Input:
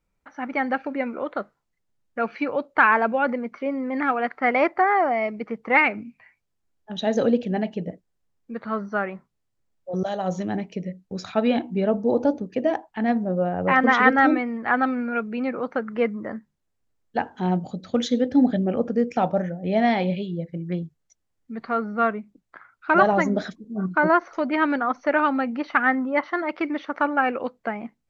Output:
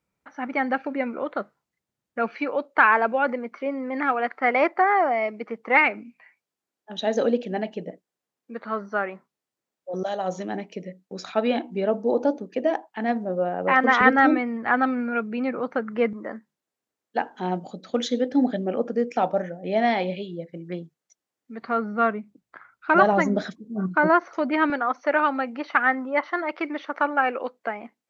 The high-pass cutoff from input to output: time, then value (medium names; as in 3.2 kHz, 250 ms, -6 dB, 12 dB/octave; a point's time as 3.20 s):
100 Hz
from 2.29 s 270 Hz
from 14.01 s 75 Hz
from 16.13 s 270 Hz
from 21.62 s 96 Hz
from 24.70 s 340 Hz